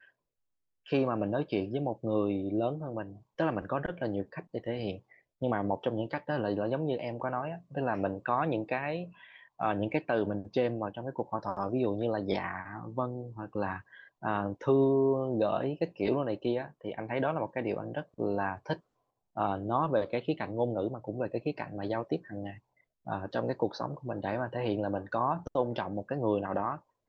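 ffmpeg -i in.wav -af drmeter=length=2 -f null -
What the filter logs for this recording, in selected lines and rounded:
Channel 1: DR: 12.7
Overall DR: 12.7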